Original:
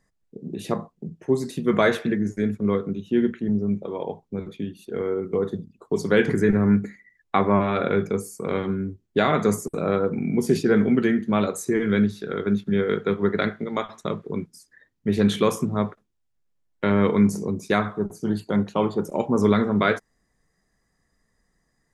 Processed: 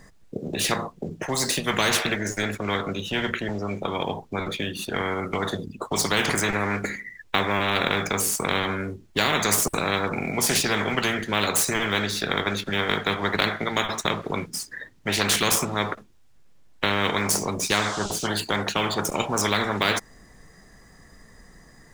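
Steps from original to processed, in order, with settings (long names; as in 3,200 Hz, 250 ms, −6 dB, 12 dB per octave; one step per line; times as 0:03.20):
running median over 3 samples
0:17.70–0:18.26: noise in a band 2,900–7,800 Hz −57 dBFS
every bin compressed towards the loudest bin 4 to 1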